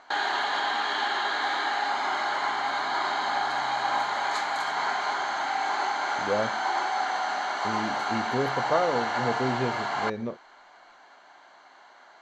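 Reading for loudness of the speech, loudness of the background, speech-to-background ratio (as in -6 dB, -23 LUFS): -31.5 LUFS, -27.5 LUFS, -4.0 dB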